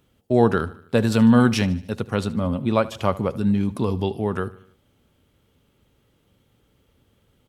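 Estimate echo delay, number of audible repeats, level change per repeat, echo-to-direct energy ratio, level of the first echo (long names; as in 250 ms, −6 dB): 75 ms, 3, −5.5 dB, −17.5 dB, −19.0 dB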